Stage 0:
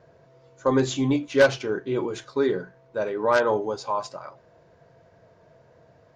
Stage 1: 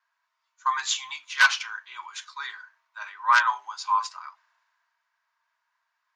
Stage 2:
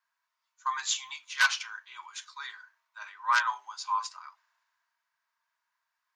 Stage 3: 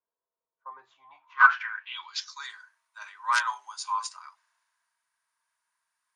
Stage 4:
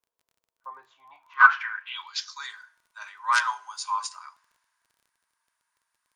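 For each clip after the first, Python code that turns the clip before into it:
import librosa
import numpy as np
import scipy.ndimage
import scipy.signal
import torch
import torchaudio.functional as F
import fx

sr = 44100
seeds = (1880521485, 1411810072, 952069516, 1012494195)

y1 = scipy.signal.sosfilt(scipy.signal.ellip(4, 1.0, 50, 1000.0, 'highpass', fs=sr, output='sos'), x)
y1 = fx.band_widen(y1, sr, depth_pct=40)
y1 = F.gain(torch.from_numpy(y1), 4.0).numpy()
y2 = fx.high_shelf(y1, sr, hz=5100.0, db=7.5)
y2 = F.gain(torch.from_numpy(y2), -6.5).numpy()
y3 = fx.filter_sweep_lowpass(y2, sr, from_hz=480.0, to_hz=9500.0, start_s=0.92, end_s=2.55, q=7.9)
y4 = fx.rev_fdn(y3, sr, rt60_s=0.64, lf_ratio=1.0, hf_ratio=0.85, size_ms=20.0, drr_db=17.0)
y4 = fx.dmg_crackle(y4, sr, seeds[0], per_s=23.0, level_db=-53.0)
y4 = F.gain(torch.from_numpy(y4), 2.0).numpy()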